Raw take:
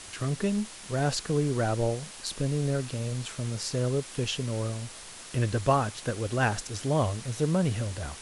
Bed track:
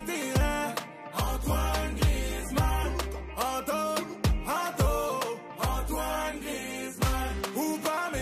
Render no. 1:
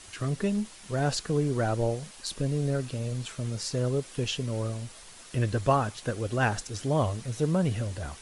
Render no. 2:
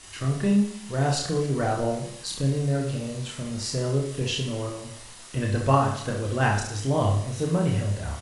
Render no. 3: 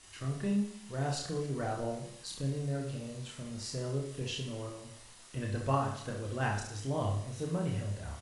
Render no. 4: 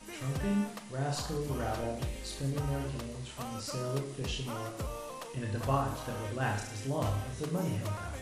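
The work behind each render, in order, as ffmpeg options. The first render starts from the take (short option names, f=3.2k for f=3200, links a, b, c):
-af "afftdn=nr=6:nf=-45"
-filter_complex "[0:a]asplit=2[a][b];[b]adelay=29,volume=-4dB[c];[a][c]amix=inputs=2:normalize=0,aecho=1:1:30|69|119.7|185.6|271.3:0.631|0.398|0.251|0.158|0.1"
-af "volume=-10dB"
-filter_complex "[1:a]volume=-13dB[a];[0:a][a]amix=inputs=2:normalize=0"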